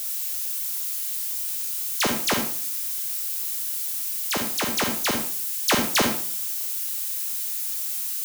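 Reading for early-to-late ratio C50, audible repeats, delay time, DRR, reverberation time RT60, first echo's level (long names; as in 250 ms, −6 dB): 5.0 dB, no echo audible, no echo audible, 3.0 dB, 0.50 s, no echo audible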